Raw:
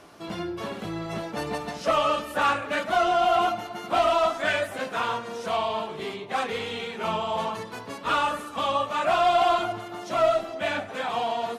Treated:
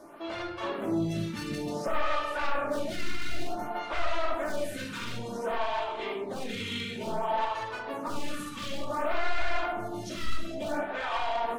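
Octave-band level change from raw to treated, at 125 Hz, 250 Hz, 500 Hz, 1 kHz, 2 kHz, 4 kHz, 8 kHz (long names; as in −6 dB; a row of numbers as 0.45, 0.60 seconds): +0.5, −0.5, −7.0, −8.5, −5.0, −6.0, −3.0 decibels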